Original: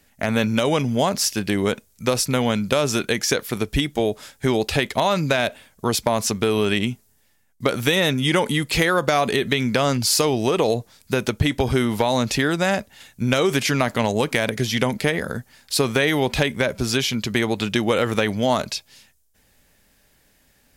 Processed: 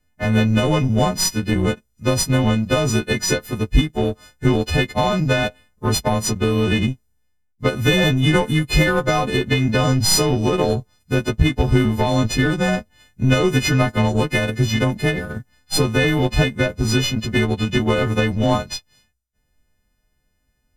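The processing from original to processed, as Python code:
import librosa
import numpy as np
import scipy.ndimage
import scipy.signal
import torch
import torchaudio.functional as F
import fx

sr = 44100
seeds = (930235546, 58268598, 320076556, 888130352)

y = fx.freq_snap(x, sr, grid_st=3)
y = fx.power_curve(y, sr, exponent=1.4)
y = fx.riaa(y, sr, side='playback')
y = y * 10.0 ** (4.5 / 20.0)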